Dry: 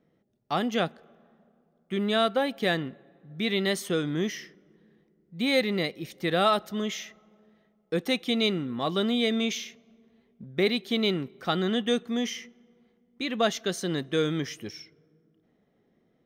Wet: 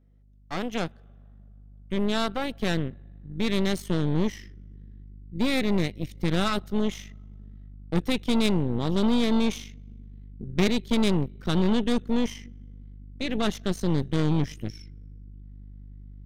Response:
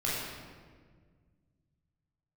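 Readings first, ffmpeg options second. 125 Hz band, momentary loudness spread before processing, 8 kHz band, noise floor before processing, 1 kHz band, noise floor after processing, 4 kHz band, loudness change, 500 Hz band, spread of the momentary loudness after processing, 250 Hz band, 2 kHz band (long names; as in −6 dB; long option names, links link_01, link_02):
+7.5 dB, 11 LU, −1.5 dB, −69 dBFS, −2.5 dB, −50 dBFS, −3.0 dB, +1.0 dB, −2.0 dB, 17 LU, +3.5 dB, −3.0 dB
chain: -af "aeval=exprs='val(0)+0.00224*(sin(2*PI*50*n/s)+sin(2*PI*2*50*n/s)/2+sin(2*PI*3*50*n/s)/3+sin(2*PI*4*50*n/s)/4+sin(2*PI*5*50*n/s)/5)':channel_layout=same,asubboost=boost=8:cutoff=190,aeval=exprs='0.376*(cos(1*acos(clip(val(0)/0.376,-1,1)))-cos(1*PI/2))+0.0668*(cos(3*acos(clip(val(0)/0.376,-1,1)))-cos(3*PI/2))+0.0335*(cos(8*acos(clip(val(0)/0.376,-1,1)))-cos(8*PI/2))':channel_layout=same"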